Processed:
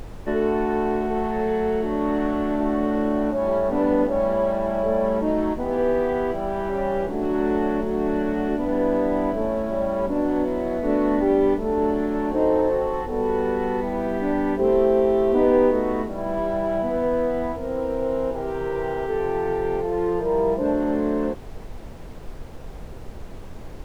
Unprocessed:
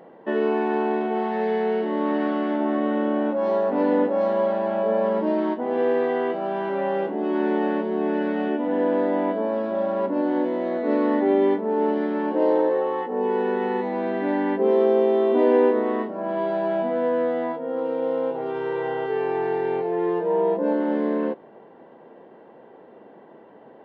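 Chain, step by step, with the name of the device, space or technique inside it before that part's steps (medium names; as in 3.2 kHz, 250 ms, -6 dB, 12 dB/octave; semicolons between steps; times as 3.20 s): car interior (peaking EQ 150 Hz +4 dB 0.92 oct; treble shelf 3.3 kHz -7 dB; brown noise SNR 12 dB)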